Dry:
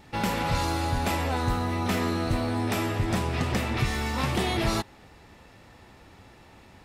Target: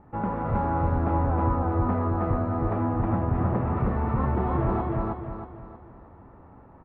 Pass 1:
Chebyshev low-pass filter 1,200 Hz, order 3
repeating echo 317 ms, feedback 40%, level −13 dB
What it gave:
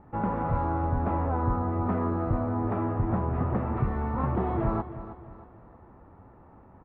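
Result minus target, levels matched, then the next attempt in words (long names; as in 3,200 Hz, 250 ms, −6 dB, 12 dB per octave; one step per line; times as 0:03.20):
echo-to-direct −12 dB
Chebyshev low-pass filter 1,200 Hz, order 3
repeating echo 317 ms, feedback 40%, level −1 dB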